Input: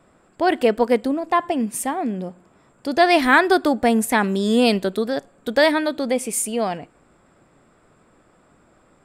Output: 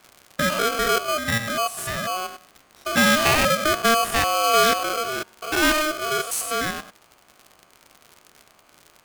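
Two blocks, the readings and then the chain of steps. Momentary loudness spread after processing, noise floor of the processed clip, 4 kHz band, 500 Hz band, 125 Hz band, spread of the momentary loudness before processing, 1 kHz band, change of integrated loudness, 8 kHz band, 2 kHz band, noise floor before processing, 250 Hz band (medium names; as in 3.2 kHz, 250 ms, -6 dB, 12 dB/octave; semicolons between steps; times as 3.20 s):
11 LU, -58 dBFS, +4.5 dB, -5.0 dB, +1.0 dB, 11 LU, -0.5 dB, -1.5 dB, +3.0 dB, +0.5 dB, -58 dBFS, -8.0 dB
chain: spectrogram pixelated in time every 100 ms; crackle 91 per s -32 dBFS; polarity switched at an audio rate 920 Hz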